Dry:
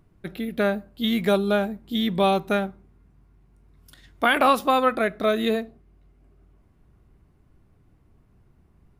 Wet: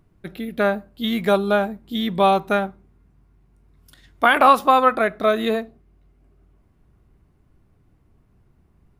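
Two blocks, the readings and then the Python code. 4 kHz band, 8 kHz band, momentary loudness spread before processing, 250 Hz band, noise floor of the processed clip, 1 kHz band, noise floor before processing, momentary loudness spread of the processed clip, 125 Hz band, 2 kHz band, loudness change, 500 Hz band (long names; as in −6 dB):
+0.5 dB, can't be measured, 11 LU, +0.5 dB, −60 dBFS, +6.0 dB, −60 dBFS, 13 LU, +0.5 dB, +3.5 dB, +3.5 dB, +3.0 dB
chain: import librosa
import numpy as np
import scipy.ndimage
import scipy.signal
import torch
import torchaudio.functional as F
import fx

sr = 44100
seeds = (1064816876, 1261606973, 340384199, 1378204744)

y = fx.dynamic_eq(x, sr, hz=1000.0, q=0.9, threshold_db=-34.0, ratio=4.0, max_db=7)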